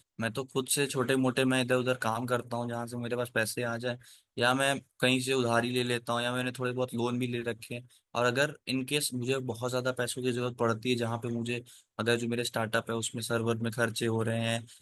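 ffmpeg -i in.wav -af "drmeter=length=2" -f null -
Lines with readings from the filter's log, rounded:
Channel 1: DR: 13.6
Overall DR: 13.6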